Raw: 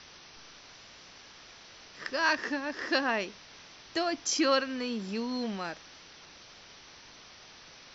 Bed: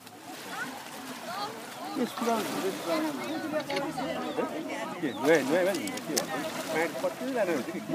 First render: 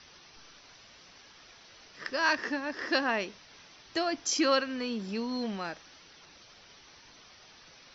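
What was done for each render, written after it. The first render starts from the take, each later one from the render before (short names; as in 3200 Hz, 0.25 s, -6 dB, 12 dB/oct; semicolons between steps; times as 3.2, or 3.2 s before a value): denoiser 6 dB, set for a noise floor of -53 dBFS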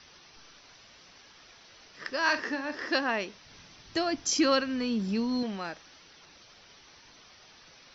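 2.22–2.82 doubler 47 ms -10 dB; 3.45–5.43 tone controls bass +10 dB, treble +2 dB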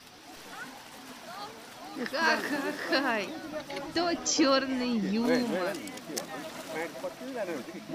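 add bed -6.5 dB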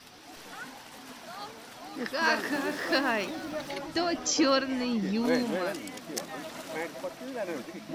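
2.52–3.74 G.711 law mismatch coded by mu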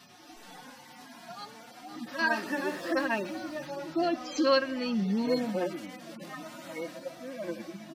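median-filter separation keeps harmonic; comb 5.6 ms, depth 39%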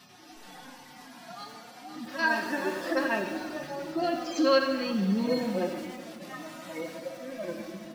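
plate-style reverb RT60 1.6 s, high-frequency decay 0.8×, DRR 5 dB; lo-fi delay 88 ms, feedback 35%, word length 7-bit, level -13 dB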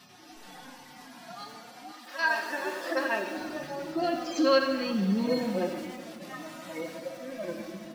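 1.91–3.36 HPF 700 Hz -> 290 Hz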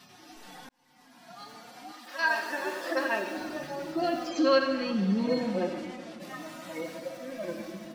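0.69–1.77 fade in; 4.29–6.2 air absorption 50 m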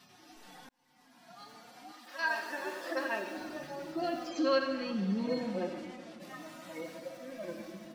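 gain -5.5 dB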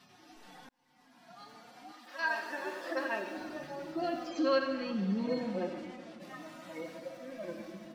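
high shelf 5800 Hz -6.5 dB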